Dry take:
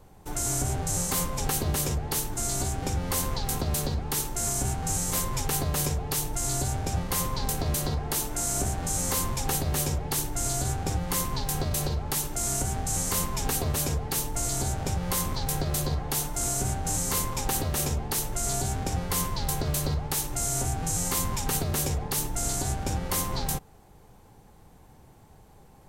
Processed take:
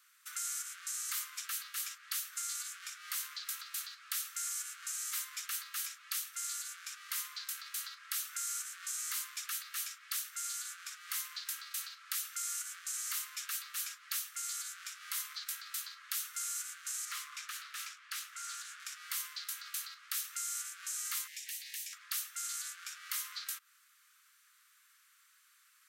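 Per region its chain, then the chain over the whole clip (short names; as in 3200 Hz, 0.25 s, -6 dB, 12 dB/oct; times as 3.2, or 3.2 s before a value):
17.05–18.8 LPF 3600 Hz 6 dB/oct + doubler 18 ms -11 dB + Doppler distortion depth 0.27 ms
21.27–21.93 Chebyshev high-pass 1800 Hz, order 6 + compressor 2.5:1, threshold -41 dBFS
whole clip: compressor, threshold -30 dBFS; steep high-pass 1200 Hz 96 dB/oct; dynamic EQ 8300 Hz, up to -4 dB, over -47 dBFS, Q 0.9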